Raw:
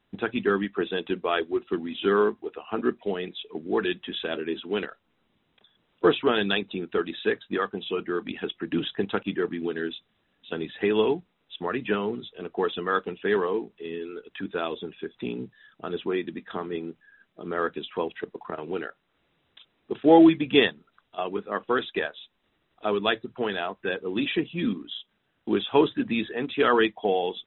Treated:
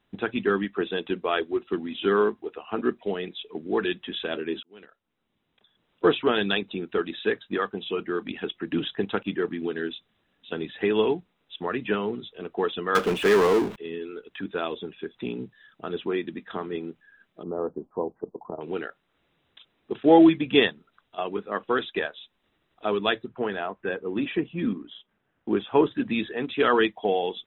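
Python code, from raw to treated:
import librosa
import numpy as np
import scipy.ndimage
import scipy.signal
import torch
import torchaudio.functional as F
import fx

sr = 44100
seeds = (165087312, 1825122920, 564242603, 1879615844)

y = fx.power_curve(x, sr, exponent=0.5, at=(12.95, 13.76))
y = fx.steep_lowpass(y, sr, hz=970.0, slope=36, at=(17.43, 18.61))
y = fx.lowpass(y, sr, hz=2100.0, slope=12, at=(23.28, 25.91))
y = fx.edit(y, sr, fx.fade_in_span(start_s=4.63, length_s=1.48), tone=tone)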